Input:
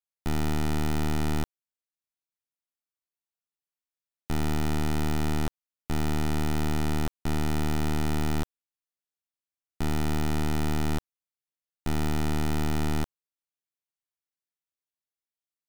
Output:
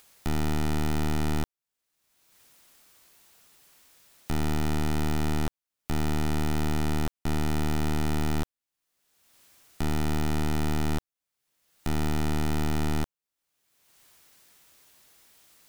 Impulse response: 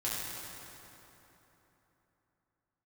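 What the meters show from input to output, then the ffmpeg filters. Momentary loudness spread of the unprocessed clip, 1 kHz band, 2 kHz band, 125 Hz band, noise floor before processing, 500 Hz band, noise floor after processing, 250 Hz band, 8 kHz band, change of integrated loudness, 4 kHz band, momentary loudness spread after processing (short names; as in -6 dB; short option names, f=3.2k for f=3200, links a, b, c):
6 LU, 0.0 dB, 0.0 dB, 0.0 dB, under -85 dBFS, 0.0 dB, under -85 dBFS, 0.0 dB, 0.0 dB, 0.0 dB, 0.0 dB, 6 LU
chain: -af "acompressor=mode=upward:threshold=-32dB:ratio=2.5"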